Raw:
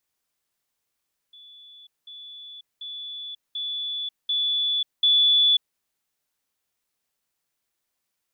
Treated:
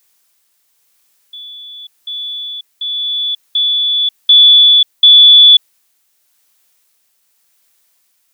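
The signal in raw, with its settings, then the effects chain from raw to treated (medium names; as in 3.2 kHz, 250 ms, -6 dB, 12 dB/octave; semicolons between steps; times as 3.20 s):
level ladder 3.45 kHz -45 dBFS, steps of 6 dB, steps 6, 0.54 s 0.20 s
tilt EQ +2 dB/octave; tremolo 0.91 Hz, depth 30%; loudness maximiser +15.5 dB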